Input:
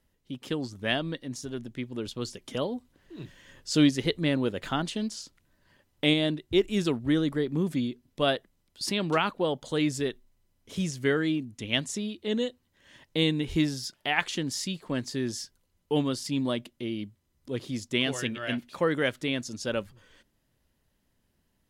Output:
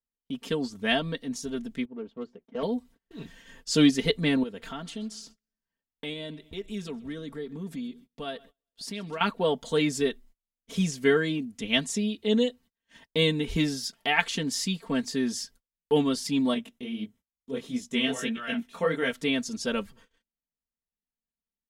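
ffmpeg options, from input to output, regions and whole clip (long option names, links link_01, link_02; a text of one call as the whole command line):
ffmpeg -i in.wav -filter_complex "[0:a]asettb=1/sr,asplit=3[link_01][link_02][link_03];[link_01]atrim=end=1.854[link_04];[link_02]atrim=start=1.85:end=2.63,asetpts=PTS-STARTPTS,afade=type=in:duration=0.004:curve=qsin,afade=type=out:start_time=0.776:duration=0.004:curve=qsin,highpass=frequency=470:poles=1,adynamicsmooth=sensitivity=1:basefreq=730[link_05];[link_03]atrim=start=2.626[link_06];[link_04][link_05]acrossfade=duration=0.004:curve1=hsin:curve2=qsin[link_07];[link_07][link_06]acrossfade=duration=0.004:curve1=qsin:curve2=hsin,asettb=1/sr,asplit=3[link_08][link_09][link_10];[link_08]atrim=end=4.434[link_11];[link_09]atrim=start=4.43:end=9.21,asetpts=PTS-STARTPTS,afade=type=in:duration=0.004:curve=qsin,afade=type=out:start_time=4.776:duration=0.004:curve=qsin,acompressor=threshold=-45dB:ratio=2:attack=3.2:release=140:knee=1:detection=peak,aecho=1:1:130|260|390|520:0.0708|0.0418|0.0246|0.0145,atrim=end_sample=210798[link_12];[link_10]atrim=start=9.206[link_13];[link_11][link_12]acrossfade=duration=0.004:curve1=hsin:curve2=qsin[link_14];[link_14][link_13]acrossfade=duration=0.004:curve1=qsin:curve2=hsin,asettb=1/sr,asplit=3[link_15][link_16][link_17];[link_15]atrim=end=16.544[link_18];[link_16]atrim=start=16.54:end=19.13,asetpts=PTS-STARTPTS,afade=type=in:duration=0.004:curve=qsin,afade=type=out:start_time=2.586:duration=0.004:curve=qsin,bandreject=frequency=4600:width=5.4,flanger=delay=16:depth=7.6:speed=1.6[link_19];[link_17]atrim=start=19.126[link_20];[link_18][link_19]acrossfade=duration=0.004:curve1=hsin:curve2=qsin[link_21];[link_21][link_20]acrossfade=duration=0.004:curve1=qsin:curve2=hsin,agate=range=-30dB:threshold=-54dB:ratio=16:detection=peak,aecho=1:1:4.4:0.89" out.wav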